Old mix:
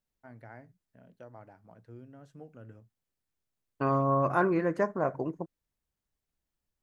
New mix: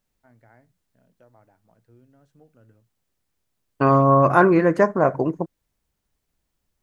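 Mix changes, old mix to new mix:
first voice −6.0 dB
second voice +11.0 dB

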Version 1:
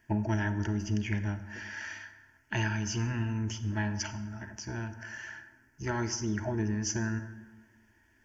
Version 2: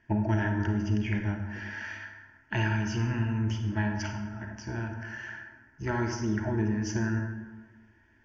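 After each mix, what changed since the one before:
first voice: send +9.0 dB
master: add high-frequency loss of the air 160 metres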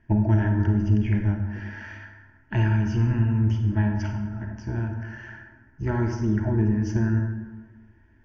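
master: add spectral tilt −2.5 dB per octave

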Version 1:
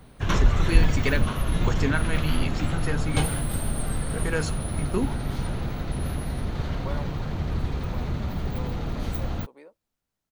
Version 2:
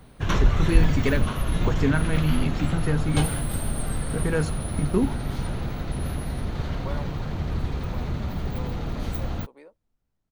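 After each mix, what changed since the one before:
first voice: add spectral tilt −2.5 dB per octave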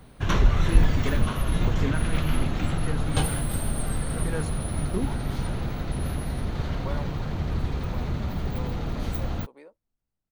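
first voice −7.5 dB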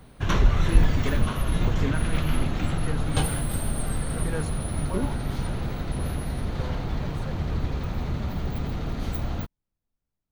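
second voice: entry −1.95 s

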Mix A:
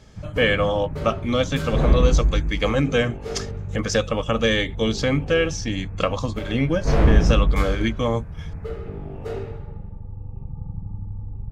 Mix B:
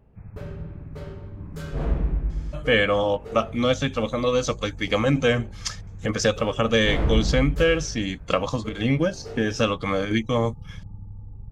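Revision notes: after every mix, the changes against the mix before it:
speech: entry +2.30 s
background −7.0 dB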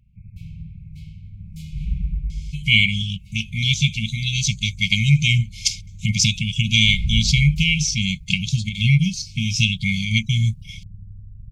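speech +10.0 dB
master: add linear-phase brick-wall band-stop 210–2,100 Hz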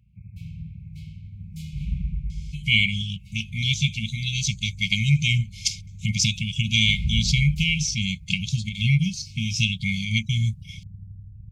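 speech −4.0 dB
background: add high-pass filter 58 Hz

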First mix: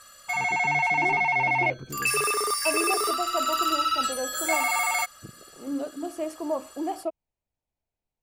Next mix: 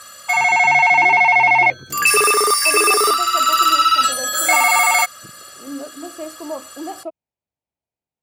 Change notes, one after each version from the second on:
background +11.0 dB
master: add high-pass filter 97 Hz 12 dB per octave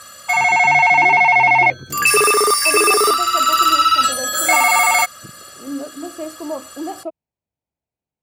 master: add low-shelf EQ 400 Hz +5.5 dB

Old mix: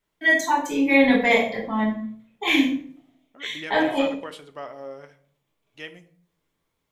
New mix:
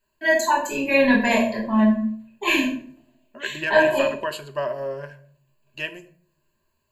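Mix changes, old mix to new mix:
second voice +6.5 dB
master: add EQ curve with evenly spaced ripples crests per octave 1.4, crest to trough 17 dB

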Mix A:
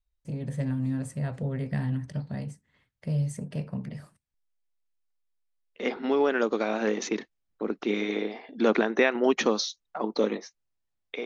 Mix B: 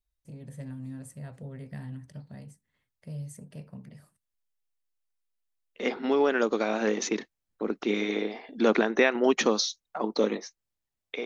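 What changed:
first voice −10.5 dB
master: remove high-frequency loss of the air 56 metres

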